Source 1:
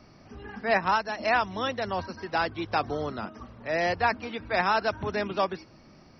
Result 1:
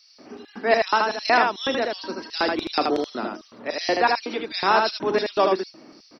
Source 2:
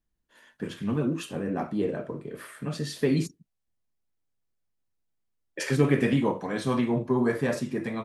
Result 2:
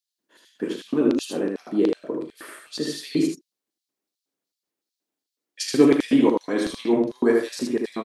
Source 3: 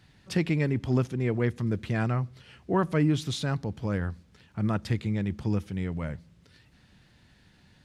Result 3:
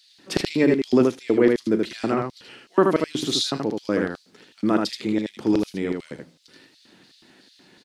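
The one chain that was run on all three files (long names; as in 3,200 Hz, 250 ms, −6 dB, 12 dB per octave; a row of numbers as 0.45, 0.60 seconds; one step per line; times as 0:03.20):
auto-filter high-pass square 2.7 Hz 310–4,200 Hz
on a send: ambience of single reflections 37 ms −14 dB, 78 ms −3.5 dB
on the sum: loudness normalisation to −23 LKFS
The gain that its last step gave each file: +4.5, +2.5, +6.5 decibels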